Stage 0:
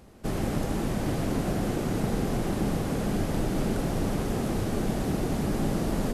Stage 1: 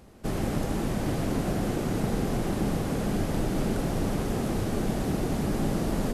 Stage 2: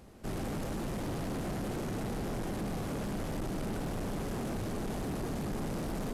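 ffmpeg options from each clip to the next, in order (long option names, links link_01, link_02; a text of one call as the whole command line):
ffmpeg -i in.wav -af anull out.wav
ffmpeg -i in.wav -af "asoftclip=type=tanh:threshold=-30.5dB,volume=-2dB" out.wav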